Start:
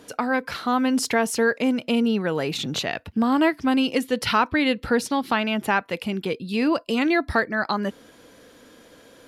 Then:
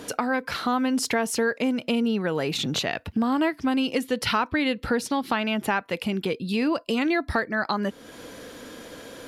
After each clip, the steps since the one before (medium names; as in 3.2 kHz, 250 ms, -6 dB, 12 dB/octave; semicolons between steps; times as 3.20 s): compression 2:1, threshold -39 dBFS, peak gain reduction 13.5 dB; trim +8.5 dB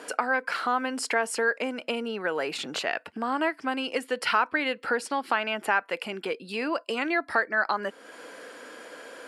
cabinet simulation 450–9900 Hz, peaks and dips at 1.5 kHz +4 dB, 3.7 kHz -9 dB, 6.1 kHz -9 dB